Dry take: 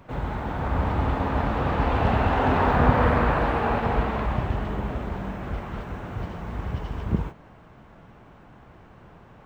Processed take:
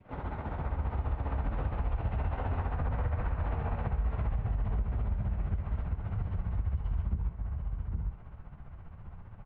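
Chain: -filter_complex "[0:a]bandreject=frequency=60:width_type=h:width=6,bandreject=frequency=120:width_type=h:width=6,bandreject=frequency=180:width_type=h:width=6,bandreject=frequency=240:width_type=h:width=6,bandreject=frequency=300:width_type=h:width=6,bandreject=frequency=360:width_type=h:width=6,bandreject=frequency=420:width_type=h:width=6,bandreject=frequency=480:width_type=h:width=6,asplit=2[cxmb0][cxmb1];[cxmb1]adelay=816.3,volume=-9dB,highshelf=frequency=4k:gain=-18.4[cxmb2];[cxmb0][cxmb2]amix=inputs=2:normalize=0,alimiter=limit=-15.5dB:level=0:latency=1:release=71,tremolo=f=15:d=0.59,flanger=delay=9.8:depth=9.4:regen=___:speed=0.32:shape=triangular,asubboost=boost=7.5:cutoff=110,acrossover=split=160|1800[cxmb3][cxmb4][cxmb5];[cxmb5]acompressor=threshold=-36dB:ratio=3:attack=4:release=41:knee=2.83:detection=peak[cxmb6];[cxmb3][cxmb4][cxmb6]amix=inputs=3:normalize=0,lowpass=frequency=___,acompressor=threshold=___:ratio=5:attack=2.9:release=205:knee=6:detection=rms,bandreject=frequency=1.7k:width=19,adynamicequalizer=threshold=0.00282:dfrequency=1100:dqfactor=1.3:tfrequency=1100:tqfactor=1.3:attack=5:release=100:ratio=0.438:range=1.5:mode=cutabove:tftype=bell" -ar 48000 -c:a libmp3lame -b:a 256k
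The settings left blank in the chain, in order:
-51, 2.5k, -26dB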